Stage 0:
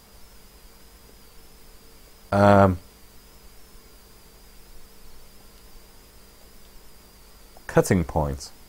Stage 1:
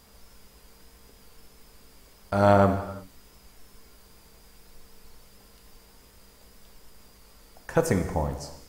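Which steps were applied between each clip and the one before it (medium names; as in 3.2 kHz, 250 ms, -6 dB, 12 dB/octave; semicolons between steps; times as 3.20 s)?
gated-style reverb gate 390 ms falling, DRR 7 dB; trim -4.5 dB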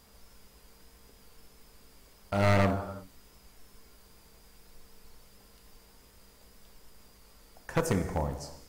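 one-sided wavefolder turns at -19 dBFS; trim -3.5 dB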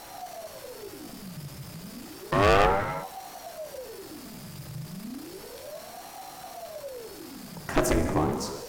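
power-law waveshaper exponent 0.7; ring modulator with a swept carrier 450 Hz, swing 70%, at 0.32 Hz; trim +4 dB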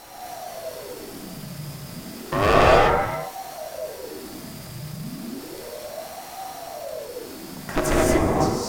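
gated-style reverb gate 260 ms rising, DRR -4.5 dB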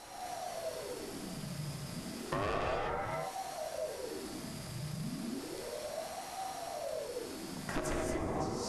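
steep low-pass 12 kHz 72 dB/octave; compression 8:1, threshold -26 dBFS, peak gain reduction 15 dB; trim -6 dB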